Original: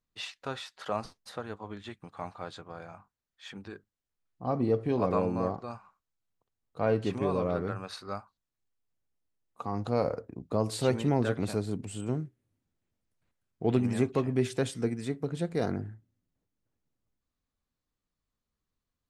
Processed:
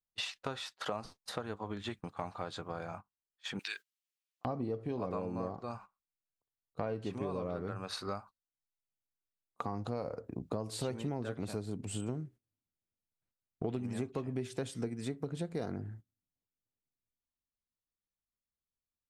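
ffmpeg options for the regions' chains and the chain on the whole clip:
ffmpeg -i in.wav -filter_complex "[0:a]asettb=1/sr,asplit=3[link_01][link_02][link_03];[link_01]atrim=end=3.594[link_04];[link_02]atrim=start=3.59:end=4.45,asetpts=PTS-STARTPTS,afade=type=in:duration=0.004:curve=qsin,afade=type=out:start_time=0.856:duration=0.004:curve=qsin,highpass=1200,highshelf=frequency=1600:width_type=q:width=1.5:gain=13[link_05];[link_03]atrim=start=4.446[link_06];[link_04][link_05]acrossfade=duration=0.004:curve1=hsin:curve2=qsin[link_07];[link_07][link_06]acrossfade=duration=0.004:curve1=qsin:curve2=hsin,agate=range=-20dB:threshold=-49dB:ratio=16:detection=peak,equalizer=frequency=1900:width_type=o:width=0.77:gain=-2,acompressor=threshold=-40dB:ratio=6,volume=5.5dB" out.wav

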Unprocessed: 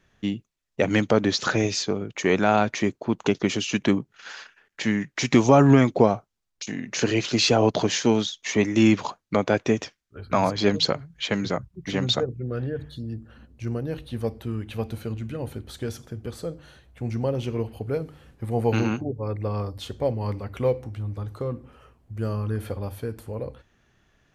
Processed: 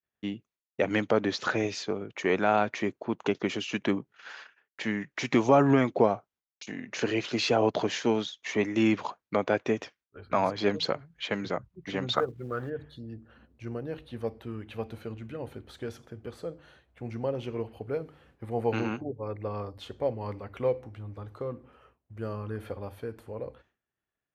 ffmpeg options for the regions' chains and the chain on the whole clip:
ffmpeg -i in.wav -filter_complex "[0:a]asettb=1/sr,asplit=3[link_01][link_02][link_03];[link_01]atrim=end=12.134[link_04];[link_02]atrim=start=12.13:end=12.7,asetpts=PTS-STARTPTS,afade=type=in:duration=0.004:curve=qsin,afade=type=out:start_time=0.566:duration=0.004:curve=qsin,equalizer=frequency=1200:width=1.5:gain=11.5,bandreject=frequency=2600:width=9.4,acrusher=bits=8:mode=log:mix=0:aa=0.000001[link_05];[link_03]atrim=start=12.696[link_06];[link_04][link_05]acrossfade=duration=0.004:curve1=hsin:curve2=qsin[link_07];[link_07][link_06]acrossfade=duration=0.004:curve1=qsin:curve2=hsin,agate=range=-33dB:threshold=-50dB:ratio=3:detection=peak,highpass=45,bass=frequency=250:gain=-7,treble=frequency=4000:gain=-10,volume=-3.5dB" out.wav

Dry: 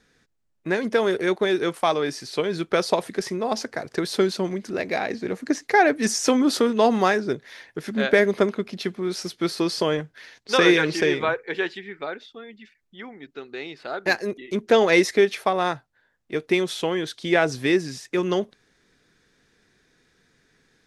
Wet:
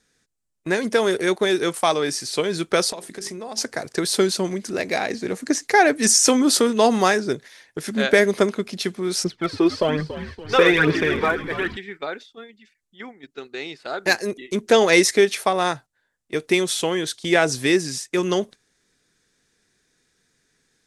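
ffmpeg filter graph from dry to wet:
ffmpeg -i in.wav -filter_complex "[0:a]asettb=1/sr,asplit=3[link_01][link_02][link_03];[link_01]atrim=end=2.914[link_04];[link_02]atrim=start=2.91:end=3.58,asetpts=PTS-STARTPTS,afade=type=in:duration=0.004:curve=qsin,afade=type=out:start_time=0.666:duration=0.004:curve=qsin,bandreject=frequency=50:width_type=h:width=6,bandreject=frequency=100:width_type=h:width=6,bandreject=frequency=150:width_type=h:width=6,bandreject=frequency=200:width_type=h:width=6,bandreject=frequency=250:width_type=h:width=6,bandreject=frequency=300:width_type=h:width=6,bandreject=frequency=350:width_type=h:width=6,bandreject=frequency=400:width_type=h:width=6,acompressor=threshold=-33dB:ratio=4:attack=3.2:release=140:knee=1:detection=peak[link_05];[link_03]atrim=start=3.576[link_06];[link_04][link_05]acrossfade=duration=0.004:curve1=hsin:curve2=qsin[link_07];[link_07][link_06]acrossfade=duration=0.004:curve1=qsin:curve2=hsin,asettb=1/sr,asplit=3[link_08][link_09][link_10];[link_08]atrim=end=9.244[link_11];[link_09]atrim=start=9.24:end=11.77,asetpts=PTS-STARTPTS,afade=type=in:duration=0.004:curve=qsin,afade=type=out:start_time=2.526:duration=0.004:curve=qsin,lowpass=2300,aphaser=in_gain=1:out_gain=1:delay=2.9:decay=0.58:speed=1.2:type=triangular,asplit=7[link_12][link_13][link_14][link_15][link_16][link_17][link_18];[link_13]adelay=282,afreqshift=-76,volume=-12.5dB[link_19];[link_14]adelay=564,afreqshift=-152,volume=-17.9dB[link_20];[link_15]adelay=846,afreqshift=-228,volume=-23.2dB[link_21];[link_16]adelay=1128,afreqshift=-304,volume=-28.6dB[link_22];[link_17]adelay=1410,afreqshift=-380,volume=-33.9dB[link_23];[link_18]adelay=1692,afreqshift=-456,volume=-39.3dB[link_24];[link_12][link_19][link_20][link_21][link_22][link_23][link_24]amix=inputs=7:normalize=0,atrim=end_sample=111573[link_25];[link_10]atrim=start=11.766[link_26];[link_11][link_25]acrossfade=duration=0.004:curve1=hsin:curve2=qsin[link_27];[link_27][link_26]acrossfade=duration=0.004:curve1=qsin:curve2=hsin,agate=range=-8dB:threshold=-39dB:ratio=16:detection=peak,equalizer=frequency=8700:width_type=o:width=1.4:gain=12.5,volume=1.5dB" out.wav

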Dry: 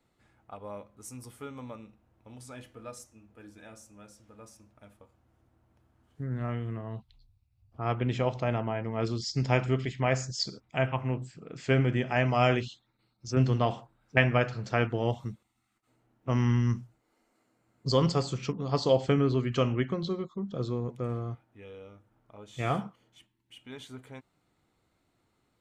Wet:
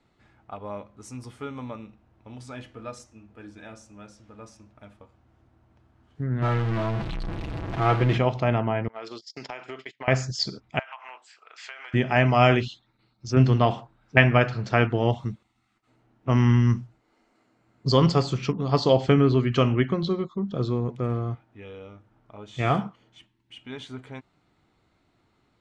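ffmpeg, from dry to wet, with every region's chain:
ffmpeg -i in.wav -filter_complex "[0:a]asettb=1/sr,asplit=3[link_01][link_02][link_03];[link_01]atrim=end=6.424[link_04];[link_02]atrim=start=6.42:end=8.18,asetpts=PTS-STARTPTS,afade=type=in:duration=0.004:curve=qsin,afade=type=out:start_time=1.756:duration=0.004:curve=qsin,aeval=exprs='val(0)+0.5*0.0335*sgn(val(0))':channel_layout=same,bass=frequency=250:gain=-2,treble=frequency=4000:gain=-13,aecho=1:1:6.1:0.51,atrim=end_sample=77616[link_05];[link_03]atrim=start=8.176[link_06];[link_04][link_05]acrossfade=duration=0.004:curve1=hsin:curve2=qsin[link_07];[link_07][link_06]acrossfade=duration=0.004:curve1=qsin:curve2=hsin,asettb=1/sr,asplit=3[link_08][link_09][link_10];[link_08]atrim=end=8.884[link_11];[link_09]atrim=start=8.88:end=10.08,asetpts=PTS-STARTPTS,afade=type=in:duration=0.004:curve=qsin,afade=type=out:start_time=1.196:duration=0.004:curve=qsin,agate=range=-27dB:threshold=-33dB:ratio=16:release=100:detection=peak,highpass=550,acompressor=threshold=-38dB:ratio=10:attack=3.2:release=140:knee=1:detection=peak[link_12];[link_10]atrim=start=10.076[link_13];[link_11][link_12]acrossfade=duration=0.004:curve1=hsin:curve2=qsin[link_14];[link_14][link_13]acrossfade=duration=0.004:curve1=qsin:curve2=hsin,asettb=1/sr,asplit=3[link_15][link_16][link_17];[link_15]atrim=end=10.794[link_18];[link_16]atrim=start=10.79:end=11.94,asetpts=PTS-STARTPTS,afade=type=in:duration=0.004:curve=qsin,afade=type=out:start_time=1.146:duration=0.004:curve=qsin,highpass=frequency=840:width=0.5412,highpass=frequency=840:width=1.3066,acompressor=threshold=-42dB:ratio=12:attack=3.2:release=140:knee=1:detection=peak[link_19];[link_17]atrim=start=11.936[link_20];[link_18][link_19]acrossfade=duration=0.004:curve1=hsin:curve2=qsin[link_21];[link_21][link_20]acrossfade=duration=0.004:curve1=qsin:curve2=hsin,lowpass=5300,equalizer=frequency=510:width=7.8:gain=-4.5,volume=6.5dB" out.wav

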